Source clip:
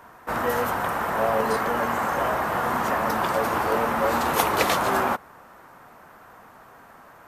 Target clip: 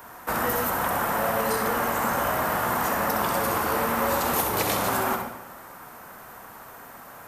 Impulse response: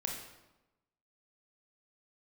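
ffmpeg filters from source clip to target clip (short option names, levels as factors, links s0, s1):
-filter_complex "[0:a]aemphasis=mode=production:type=50kf,acrossover=split=270|910[s0][s1][s2];[s0]acompressor=threshold=0.0141:ratio=4[s3];[s1]acompressor=threshold=0.0224:ratio=4[s4];[s2]acompressor=threshold=0.0316:ratio=4[s5];[s3][s4][s5]amix=inputs=3:normalize=0,asplit=2[s6][s7];[1:a]atrim=start_sample=2205,adelay=65[s8];[s7][s8]afir=irnorm=-1:irlink=0,volume=0.531[s9];[s6][s9]amix=inputs=2:normalize=0,volume=1.26"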